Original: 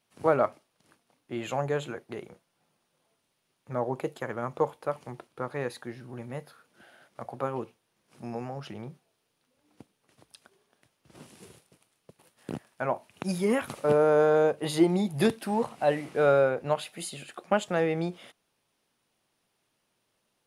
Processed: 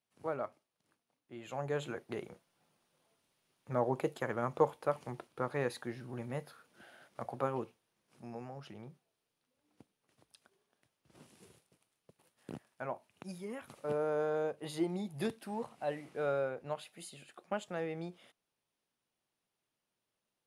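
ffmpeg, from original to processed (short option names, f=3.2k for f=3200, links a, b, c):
-af "volume=4.5dB,afade=t=in:st=1.44:d=0.64:silence=0.251189,afade=t=out:st=7.24:d=1.01:silence=0.421697,afade=t=out:st=12.71:d=0.81:silence=0.354813,afade=t=in:st=13.52:d=0.43:silence=0.473151"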